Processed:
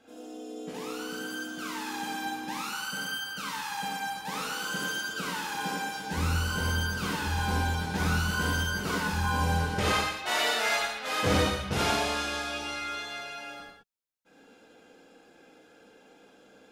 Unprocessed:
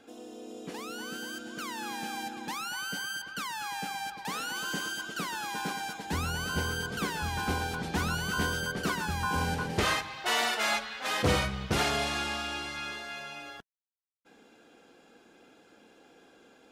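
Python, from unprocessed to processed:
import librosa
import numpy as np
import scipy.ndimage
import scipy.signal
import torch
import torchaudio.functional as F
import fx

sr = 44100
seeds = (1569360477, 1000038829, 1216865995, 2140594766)

y = x + 10.0 ** (-6.0 / 20.0) * np.pad(x, (int(119 * sr / 1000.0), 0))[:len(x)]
y = fx.rev_gated(y, sr, seeds[0], gate_ms=120, shape='flat', drr_db=-4.0)
y = y * 10.0 ** (-5.0 / 20.0)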